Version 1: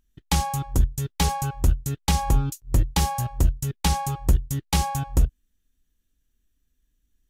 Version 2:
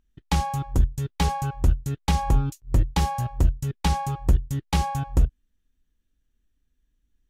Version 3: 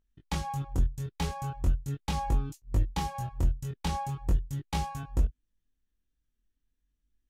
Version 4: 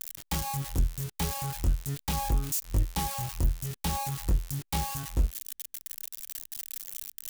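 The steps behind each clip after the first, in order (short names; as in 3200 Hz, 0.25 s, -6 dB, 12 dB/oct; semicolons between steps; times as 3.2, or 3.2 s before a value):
high shelf 5200 Hz -11.5 dB
chorus 0.4 Hz, delay 19 ms, depth 4.7 ms; gain -4.5 dB
switching spikes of -24 dBFS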